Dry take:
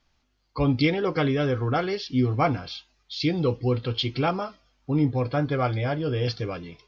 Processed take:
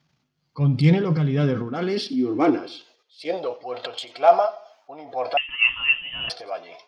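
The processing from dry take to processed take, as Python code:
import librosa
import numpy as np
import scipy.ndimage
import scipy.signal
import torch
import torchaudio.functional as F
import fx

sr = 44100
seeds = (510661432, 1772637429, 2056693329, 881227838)

p1 = fx.self_delay(x, sr, depth_ms=0.057)
p2 = fx.low_shelf(p1, sr, hz=86.0, db=3.0)
p3 = fx.level_steps(p2, sr, step_db=11, at=(2.66, 3.26))
p4 = p3 * (1.0 - 0.68 / 2.0 + 0.68 / 2.0 * np.cos(2.0 * np.pi * 2.1 * (np.arange(len(p3)) / sr)))
p5 = fx.transient(p4, sr, attack_db=-5, sustain_db=9)
p6 = fx.filter_sweep_highpass(p5, sr, from_hz=150.0, to_hz=680.0, start_s=1.21, end_s=3.58, q=7.8)
p7 = p6 + fx.echo_feedback(p6, sr, ms=89, feedback_pct=39, wet_db=-19, dry=0)
y = fx.freq_invert(p7, sr, carrier_hz=3400, at=(5.37, 6.3))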